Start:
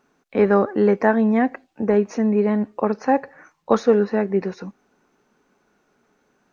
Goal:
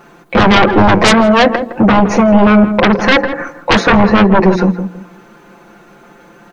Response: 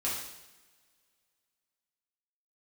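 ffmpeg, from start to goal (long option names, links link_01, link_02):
-filter_complex "[0:a]equalizer=frequency=5700:width_type=o:width=0.89:gain=-7.5,bandreject=frequency=60:width_type=h:width=6,bandreject=frequency=120:width_type=h:width=6,bandreject=frequency=180:width_type=h:width=6,bandreject=frequency=240:width_type=h:width=6,bandreject=frequency=300:width_type=h:width=6,bandreject=frequency=360:width_type=h:width=6,bandreject=frequency=420:width_type=h:width=6,bandreject=frequency=480:width_type=h:width=6,aecho=1:1:5.8:0.98,asplit=2[link_01][link_02];[link_02]acompressor=threshold=-28dB:ratio=6,volume=0dB[link_03];[link_01][link_03]amix=inputs=2:normalize=0,aeval=exprs='0.944*sin(PI/2*5.62*val(0)/0.944)':channel_layout=same,asplit=2[link_04][link_05];[link_05]adelay=163,lowpass=frequency=860:poles=1,volume=-8dB,asplit=2[link_06][link_07];[link_07]adelay=163,lowpass=frequency=860:poles=1,volume=0.28,asplit=2[link_08][link_09];[link_09]adelay=163,lowpass=frequency=860:poles=1,volume=0.28[link_10];[link_06][link_08][link_10]amix=inputs=3:normalize=0[link_11];[link_04][link_11]amix=inputs=2:normalize=0,volume=-4dB"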